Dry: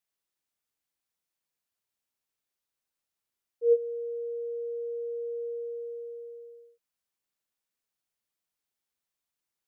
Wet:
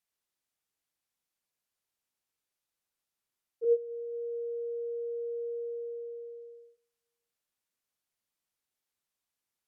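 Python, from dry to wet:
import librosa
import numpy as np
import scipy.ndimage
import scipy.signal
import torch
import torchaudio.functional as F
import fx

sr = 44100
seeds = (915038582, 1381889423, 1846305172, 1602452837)

y = fx.echo_feedback(x, sr, ms=146, feedback_pct=53, wet_db=-21.5)
y = fx.env_lowpass_down(y, sr, base_hz=450.0, full_db=-31.5)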